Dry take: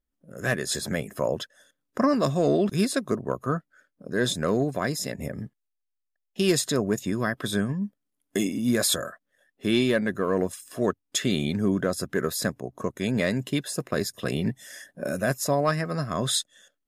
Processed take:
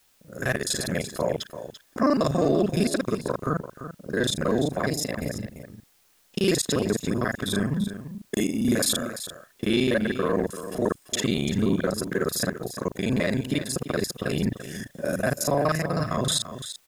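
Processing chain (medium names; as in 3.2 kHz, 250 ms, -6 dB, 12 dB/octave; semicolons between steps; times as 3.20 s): time reversed locally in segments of 35 ms; transient shaper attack -1 dB, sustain -5 dB; in parallel at +1 dB: peak limiter -20 dBFS, peak gain reduction 8 dB; on the sum: word length cut 10-bit, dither triangular; delay 340 ms -11.5 dB; trim -3 dB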